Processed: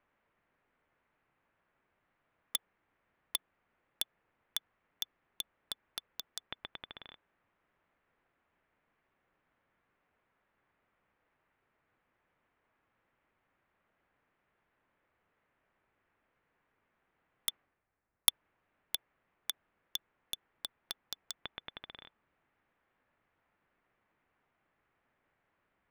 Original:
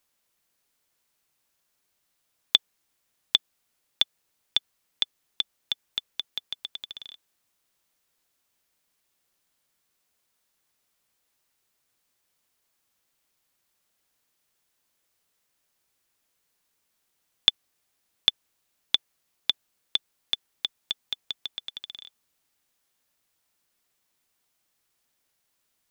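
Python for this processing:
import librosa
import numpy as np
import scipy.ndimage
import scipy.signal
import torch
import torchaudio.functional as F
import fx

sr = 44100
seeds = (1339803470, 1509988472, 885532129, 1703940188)

y = scipy.signal.sosfilt(scipy.signal.butter(4, 2100.0, 'lowpass', fs=sr, output='sos'), x)
y = (np.mod(10.0 ** (26.0 / 20.0) * y + 1.0, 2.0) - 1.0) / 10.0 ** (26.0 / 20.0)
y = fx.band_widen(y, sr, depth_pct=100, at=(17.49, 18.29))
y = F.gain(torch.from_numpy(y), 6.0).numpy()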